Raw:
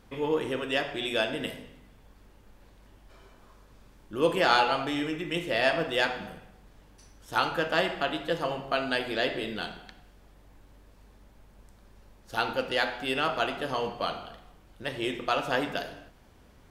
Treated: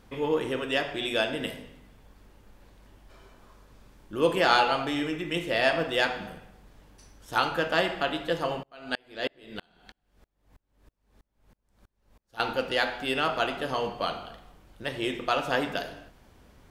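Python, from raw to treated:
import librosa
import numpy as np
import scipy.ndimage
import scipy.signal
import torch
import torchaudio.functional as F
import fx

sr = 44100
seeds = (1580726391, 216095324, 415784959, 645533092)

y = fx.tremolo_decay(x, sr, direction='swelling', hz=3.1, depth_db=36, at=(8.63, 12.4))
y = y * librosa.db_to_amplitude(1.0)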